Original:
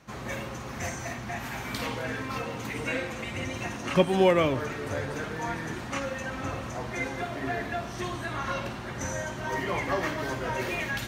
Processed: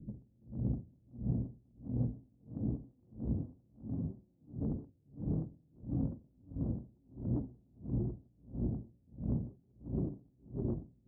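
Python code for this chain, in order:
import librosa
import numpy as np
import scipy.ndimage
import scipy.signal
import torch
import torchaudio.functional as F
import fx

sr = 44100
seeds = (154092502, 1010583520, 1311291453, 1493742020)

p1 = scipy.signal.sosfilt(scipy.signal.cheby2(4, 60, 940.0, 'lowpass', fs=sr, output='sos'), x)
p2 = fx.over_compress(p1, sr, threshold_db=-41.0, ratio=-1.0)
p3 = 10.0 ** (-35.5 / 20.0) * np.tanh(p2 / 10.0 ** (-35.5 / 20.0))
p4 = p3 + fx.echo_diffused(p3, sr, ms=559, feedback_pct=47, wet_db=-4, dry=0)
p5 = fx.vibrato(p4, sr, rate_hz=5.6, depth_cents=64.0)
p6 = p5 * 10.0 ** (-37 * (0.5 - 0.5 * np.cos(2.0 * np.pi * 1.5 * np.arange(len(p5)) / sr)) / 20.0)
y = F.gain(torch.from_numpy(p6), 8.5).numpy()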